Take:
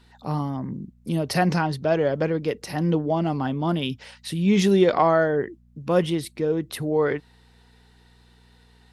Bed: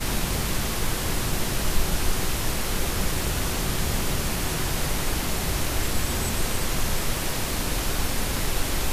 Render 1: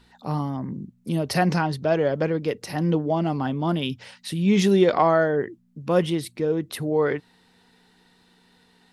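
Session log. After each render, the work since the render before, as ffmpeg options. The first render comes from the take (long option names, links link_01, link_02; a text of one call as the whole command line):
ffmpeg -i in.wav -af "bandreject=frequency=60:width_type=h:width=4,bandreject=frequency=120:width_type=h:width=4" out.wav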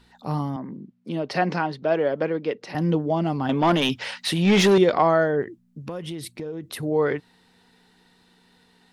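ffmpeg -i in.wav -filter_complex "[0:a]asettb=1/sr,asplit=3[link_01][link_02][link_03];[link_01]atrim=end=0.564[link_04];[link_02]atrim=start=0.56:end=2.75,asetpts=PTS-STARTPTS,afade=type=in:duration=0.004:curve=qsin,afade=type=out:start_time=2.186:duration=0.004:curve=qsin,highpass=230,lowpass=3900[link_05];[link_03]atrim=start=2.746[link_06];[link_04][link_05]acrossfade=duration=0.004:curve1=hsin:curve2=qsin[link_07];[link_07][link_06]acrossfade=duration=0.004:curve1=qsin:curve2=hsin,asettb=1/sr,asplit=3[link_08][link_09][link_10];[link_08]atrim=end=3.494[link_11];[link_09]atrim=start=3.49:end=4.78,asetpts=PTS-STARTPTS,afade=type=in:duration=0.004:curve=qsin,afade=type=out:start_time=1.286:duration=0.004:curve=qsin,asplit=2[link_12][link_13];[link_13]highpass=frequency=720:poles=1,volume=20dB,asoftclip=type=tanh:threshold=-9dB[link_14];[link_12][link_14]amix=inputs=2:normalize=0,lowpass=frequency=3600:poles=1,volume=-6dB[link_15];[link_10]atrim=start=4.776[link_16];[link_11][link_15]acrossfade=duration=0.004:curve1=hsin:curve2=qsin[link_17];[link_17][link_16]acrossfade=duration=0.004:curve1=qsin:curve2=hsin,asettb=1/sr,asplit=3[link_18][link_19][link_20];[link_18]atrim=end=5.424[link_21];[link_19]atrim=start=5.42:end=6.83,asetpts=PTS-STARTPTS,afade=type=in:duration=0.004:curve=qsin,afade=type=out:start_time=1.406:duration=0.004:curve=qsin,acompressor=threshold=-28dB:ratio=12:attack=3.2:release=140:knee=1:detection=peak[link_22];[link_20]atrim=start=6.826[link_23];[link_21][link_22]acrossfade=duration=0.004:curve1=hsin:curve2=qsin[link_24];[link_24][link_23]acrossfade=duration=0.004:curve1=qsin:curve2=hsin" out.wav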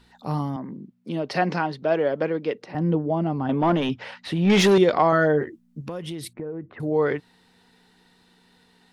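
ffmpeg -i in.wav -filter_complex "[0:a]asettb=1/sr,asplit=3[link_01][link_02][link_03];[link_01]atrim=end=2.644[link_04];[link_02]atrim=start=2.64:end=4.5,asetpts=PTS-STARTPTS,afade=type=in:duration=0.004:curve=qsin,afade=type=out:start_time=1.856:duration=0.004:curve=qsin,lowpass=frequency=1200:poles=1[link_05];[link_03]atrim=start=4.496[link_06];[link_04][link_05]acrossfade=duration=0.004:curve1=hsin:curve2=qsin[link_07];[link_07][link_06]acrossfade=duration=0.004:curve1=qsin:curve2=hsin,asettb=1/sr,asplit=3[link_08][link_09][link_10];[link_08]atrim=end=5.114[link_11];[link_09]atrim=start=5.11:end=5.81,asetpts=PTS-STARTPTS,afade=type=in:duration=0.004:curve=qsin,afade=type=out:start_time=0.696:duration=0.004:curve=qsin,asplit=2[link_12][link_13];[link_13]adelay=13,volume=-4dB[link_14];[link_12][link_14]amix=inputs=2:normalize=0,atrim=end_sample=30870[link_15];[link_10]atrim=start=5.806[link_16];[link_11][link_15]acrossfade=duration=0.004:curve1=hsin:curve2=qsin[link_17];[link_17][link_16]acrossfade=duration=0.004:curve1=qsin:curve2=hsin,asettb=1/sr,asplit=3[link_18][link_19][link_20];[link_18]atrim=end=6.334[link_21];[link_19]atrim=start=6.33:end=6.8,asetpts=PTS-STARTPTS,afade=type=in:duration=0.004:curve=qsin,afade=type=out:start_time=0.466:duration=0.004:curve=qsin,lowpass=frequency=1800:width=0.5412,lowpass=frequency=1800:width=1.3066[link_22];[link_20]atrim=start=6.796[link_23];[link_21][link_22]acrossfade=duration=0.004:curve1=hsin:curve2=qsin[link_24];[link_24][link_23]acrossfade=duration=0.004:curve1=qsin:curve2=hsin" out.wav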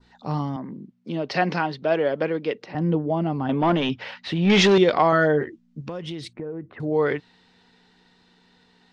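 ffmpeg -i in.wav -af "lowpass=frequency=6800:width=0.5412,lowpass=frequency=6800:width=1.3066,adynamicequalizer=threshold=0.01:dfrequency=3000:dqfactor=0.9:tfrequency=3000:tqfactor=0.9:attack=5:release=100:ratio=0.375:range=2:mode=boostabove:tftype=bell" out.wav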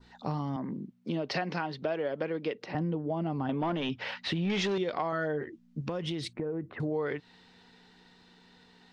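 ffmpeg -i in.wav -af "acompressor=threshold=-29dB:ratio=6" out.wav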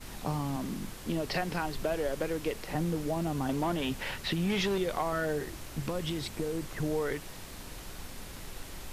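ffmpeg -i in.wav -i bed.wav -filter_complex "[1:a]volume=-18dB[link_01];[0:a][link_01]amix=inputs=2:normalize=0" out.wav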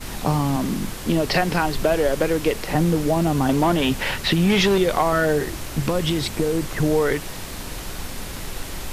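ffmpeg -i in.wav -af "volume=12dB" out.wav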